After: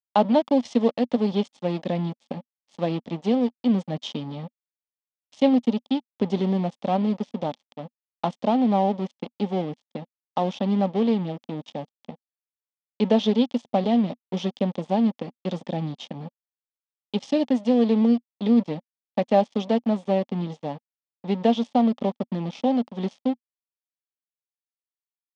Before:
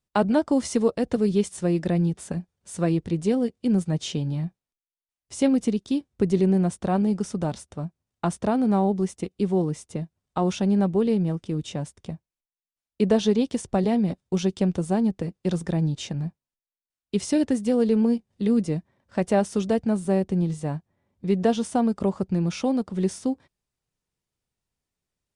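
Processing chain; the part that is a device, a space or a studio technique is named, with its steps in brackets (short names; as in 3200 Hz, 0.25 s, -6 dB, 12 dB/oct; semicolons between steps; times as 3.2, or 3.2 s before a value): blown loudspeaker (crossover distortion -35 dBFS; speaker cabinet 190–5600 Hz, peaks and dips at 240 Hz +7 dB, 360 Hz -6 dB, 570 Hz +5 dB, 830 Hz +7 dB, 1500 Hz -9 dB, 3300 Hz +9 dB)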